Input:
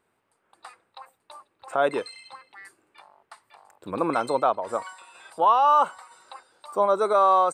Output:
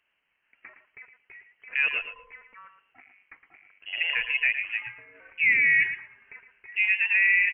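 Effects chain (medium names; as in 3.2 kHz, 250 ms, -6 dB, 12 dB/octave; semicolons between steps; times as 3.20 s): frequency inversion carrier 3.1 kHz; feedback delay 113 ms, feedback 16%, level -10 dB; trim -3 dB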